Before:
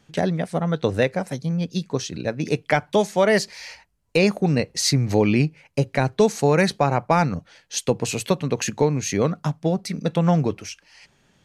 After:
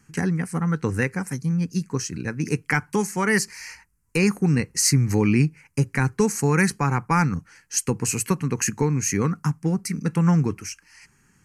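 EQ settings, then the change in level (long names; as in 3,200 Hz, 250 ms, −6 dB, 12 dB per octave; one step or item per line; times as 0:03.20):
parametric band 9,500 Hz +7.5 dB 1.7 octaves
phaser with its sweep stopped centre 1,500 Hz, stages 4
+2.0 dB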